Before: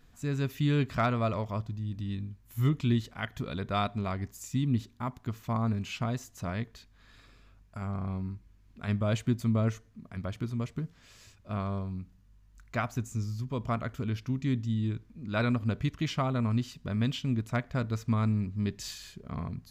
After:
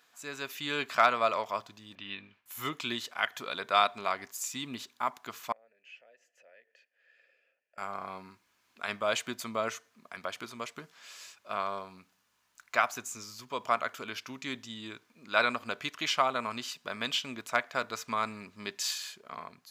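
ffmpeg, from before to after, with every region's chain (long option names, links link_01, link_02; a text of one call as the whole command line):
ffmpeg -i in.wav -filter_complex "[0:a]asettb=1/sr,asplit=3[link_01][link_02][link_03];[link_01]atrim=end=1.954[link_04];[link_02]atrim=start=1.95:end=2.46,asetpts=PTS-STARTPTS,afade=type=in:duration=0.004:curve=qsin,afade=type=out:start_time=0.506:duration=0.004:curve=qsin,lowpass=frequency=2700:width_type=q:width=2.2,agate=range=-33dB:threshold=-55dB:ratio=3:release=100:detection=peak[link_05];[link_03]atrim=start=2.456[link_06];[link_04][link_05]acrossfade=duration=0.004:curve1=hsin:curve2=qsin[link_07];[link_07][link_06]acrossfade=duration=0.004:curve1=qsin:curve2=hsin,asettb=1/sr,asplit=3[link_08][link_09][link_10];[link_08]atrim=end=5.524[link_11];[link_09]atrim=start=5.52:end=7.78,asetpts=PTS-STARTPTS,afade=type=in:duration=0.004:curve=qsin,afade=type=out:start_time=2.256:duration=0.004:curve=qsin,equalizer=frequency=3800:width_type=o:width=0.22:gain=-12,acompressor=threshold=-46dB:ratio=3:attack=3.2:release=140:knee=1:detection=peak,asplit=3[link_12][link_13][link_14];[link_12]bandpass=frequency=530:width_type=q:width=8,volume=0dB[link_15];[link_13]bandpass=frequency=1840:width_type=q:width=8,volume=-6dB[link_16];[link_14]bandpass=frequency=2480:width_type=q:width=8,volume=-9dB[link_17];[link_15][link_16][link_17]amix=inputs=3:normalize=0[link_18];[link_10]atrim=start=7.776[link_19];[link_11][link_18]acrossfade=duration=0.004:curve1=hsin:curve2=qsin[link_20];[link_20][link_19]acrossfade=duration=0.004:curve1=qsin:curve2=hsin,highpass=760,bandreject=frequency=1900:width=19,dynaudnorm=framelen=110:gausssize=13:maxgain=4dB,volume=4dB" out.wav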